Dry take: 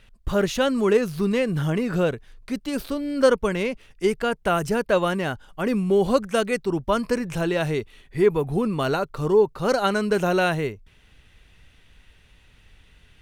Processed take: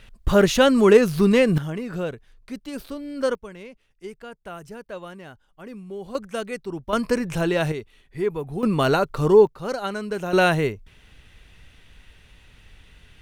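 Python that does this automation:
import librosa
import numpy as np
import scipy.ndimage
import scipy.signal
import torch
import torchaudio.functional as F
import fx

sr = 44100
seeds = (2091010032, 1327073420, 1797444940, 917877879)

y = fx.gain(x, sr, db=fx.steps((0.0, 5.5), (1.58, -6.0), (3.35, -15.5), (6.15, -7.0), (6.93, 1.5), (7.72, -6.0), (8.63, 4.0), (9.47, -6.5), (10.33, 3.5)))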